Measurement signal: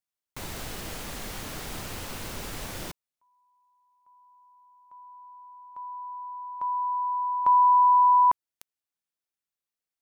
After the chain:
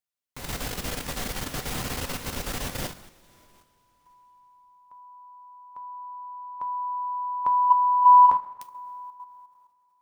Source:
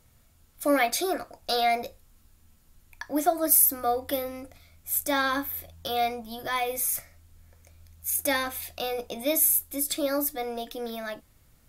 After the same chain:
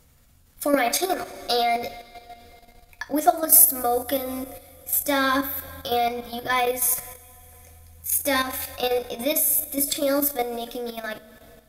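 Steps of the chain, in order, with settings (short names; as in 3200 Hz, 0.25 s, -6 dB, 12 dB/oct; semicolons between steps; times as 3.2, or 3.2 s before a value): two-slope reverb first 0.31 s, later 3.2 s, from -18 dB, DRR 6 dB; level quantiser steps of 9 dB; gain +6 dB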